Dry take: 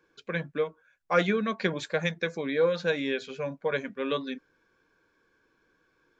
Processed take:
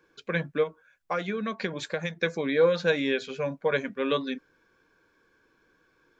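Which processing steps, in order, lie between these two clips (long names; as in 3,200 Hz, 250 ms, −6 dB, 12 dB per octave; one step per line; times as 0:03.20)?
0:00.63–0:02.22: downward compressor 6 to 1, threshold −30 dBFS, peak gain reduction 12 dB
level +3 dB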